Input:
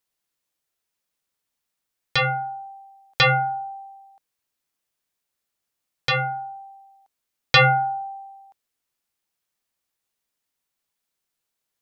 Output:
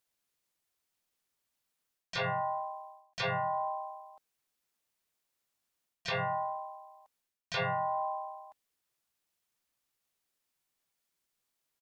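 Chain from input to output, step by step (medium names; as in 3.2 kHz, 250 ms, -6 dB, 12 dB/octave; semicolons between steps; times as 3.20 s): reverse; compression 12:1, threshold -31 dBFS, peak gain reduction 20 dB; reverse; dynamic bell 530 Hz, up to +5 dB, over -50 dBFS, Q 2.2; harmony voices -4 st -5 dB, +4 st -9 dB, +5 st -4 dB; trim -4 dB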